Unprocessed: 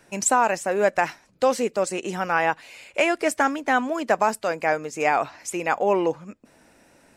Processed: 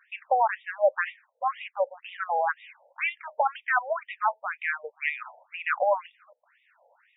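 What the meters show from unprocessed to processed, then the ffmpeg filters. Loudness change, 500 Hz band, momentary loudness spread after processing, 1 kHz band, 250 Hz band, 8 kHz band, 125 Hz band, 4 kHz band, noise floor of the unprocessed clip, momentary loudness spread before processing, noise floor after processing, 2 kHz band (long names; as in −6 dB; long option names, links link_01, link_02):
−5.0 dB, −6.5 dB, 8 LU, −4.0 dB, below −40 dB, below −40 dB, below −40 dB, −9.5 dB, −57 dBFS, 7 LU, −73 dBFS, −3.5 dB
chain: -af "afftfilt=real='re*between(b*sr/1024,630*pow(2700/630,0.5+0.5*sin(2*PI*2*pts/sr))/1.41,630*pow(2700/630,0.5+0.5*sin(2*PI*2*pts/sr))*1.41)':imag='im*between(b*sr/1024,630*pow(2700/630,0.5+0.5*sin(2*PI*2*pts/sr))/1.41,630*pow(2700/630,0.5+0.5*sin(2*PI*2*pts/sr))*1.41)':win_size=1024:overlap=0.75"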